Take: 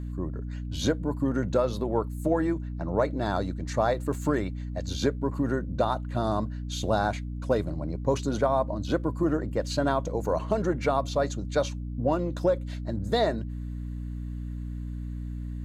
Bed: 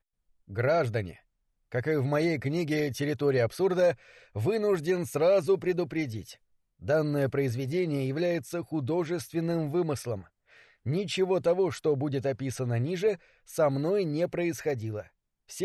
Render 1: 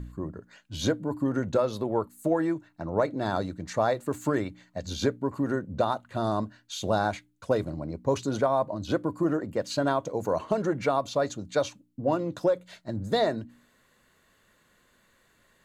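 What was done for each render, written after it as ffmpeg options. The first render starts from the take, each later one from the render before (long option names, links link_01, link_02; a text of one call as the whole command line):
ffmpeg -i in.wav -af "bandreject=frequency=60:width_type=h:width=4,bandreject=frequency=120:width_type=h:width=4,bandreject=frequency=180:width_type=h:width=4,bandreject=frequency=240:width_type=h:width=4,bandreject=frequency=300:width_type=h:width=4" out.wav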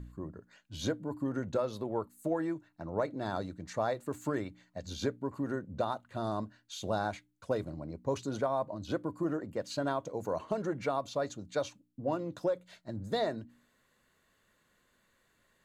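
ffmpeg -i in.wav -af "volume=-7dB" out.wav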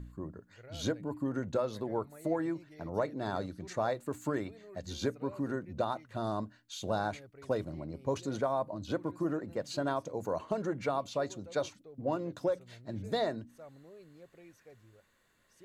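ffmpeg -i in.wav -i bed.wav -filter_complex "[1:a]volume=-26.5dB[link_01];[0:a][link_01]amix=inputs=2:normalize=0" out.wav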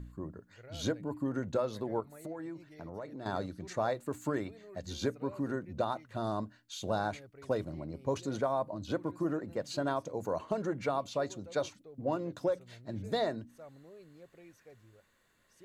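ffmpeg -i in.wav -filter_complex "[0:a]asettb=1/sr,asplit=3[link_01][link_02][link_03];[link_01]atrim=end=2.004[link_04];[link_02]atrim=start=2:end=3.26,asetpts=PTS-STARTPTS,afade=type=in:duration=0.004:curve=qsin,afade=type=out:start_time=1.256:duration=0.004:curve=qsin,acompressor=threshold=-41dB:ratio=3:attack=3.2:release=140:knee=1:detection=peak[link_05];[link_03]atrim=start=3.256[link_06];[link_04][link_05]acrossfade=duration=0.004:curve1=hsin:curve2=qsin[link_07];[link_07][link_06]acrossfade=duration=0.004:curve1=qsin:curve2=hsin" out.wav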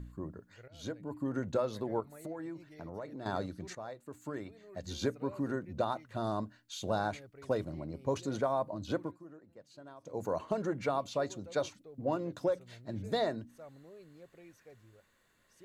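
ffmpeg -i in.wav -filter_complex "[0:a]asplit=5[link_01][link_02][link_03][link_04][link_05];[link_01]atrim=end=0.68,asetpts=PTS-STARTPTS,afade=type=out:start_time=0.676:duration=0.004:curve=hsin:silence=0.188365[link_06];[link_02]atrim=start=0.68:end=3.75,asetpts=PTS-STARTPTS,afade=type=in:duration=0.71:silence=0.188365,afade=type=out:start_time=3.066:duration=0.004:curve=hsin:silence=0.237137[link_07];[link_03]atrim=start=3.75:end=9.19,asetpts=PTS-STARTPTS,afade=type=in:duration=1.12:curve=qua:silence=0.237137,afade=type=out:start_time=5.25:duration=0.19:silence=0.112202[link_08];[link_04]atrim=start=9.19:end=10,asetpts=PTS-STARTPTS,volume=-19dB[link_09];[link_05]atrim=start=10,asetpts=PTS-STARTPTS,afade=type=in:duration=0.19:silence=0.112202[link_10];[link_06][link_07][link_08][link_09][link_10]concat=n=5:v=0:a=1" out.wav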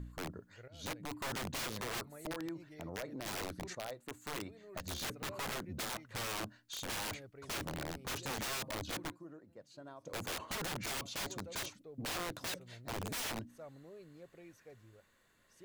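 ffmpeg -i in.wav -af "aeval=exprs='(mod(50.1*val(0)+1,2)-1)/50.1':channel_layout=same" out.wav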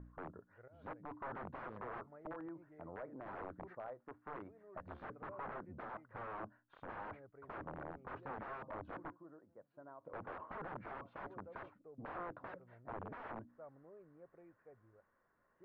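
ffmpeg -i in.wav -af "lowpass=frequency=1400:width=0.5412,lowpass=frequency=1400:width=1.3066,lowshelf=frequency=420:gain=-10" out.wav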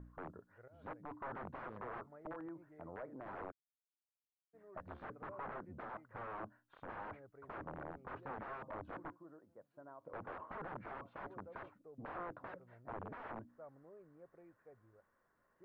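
ffmpeg -i in.wav -filter_complex "[0:a]asplit=3[link_01][link_02][link_03];[link_01]afade=type=out:start_time=3.5:duration=0.02[link_04];[link_02]acrusher=bits=3:dc=4:mix=0:aa=0.000001,afade=type=in:start_time=3.5:duration=0.02,afade=type=out:start_time=4.53:duration=0.02[link_05];[link_03]afade=type=in:start_time=4.53:duration=0.02[link_06];[link_04][link_05][link_06]amix=inputs=3:normalize=0" out.wav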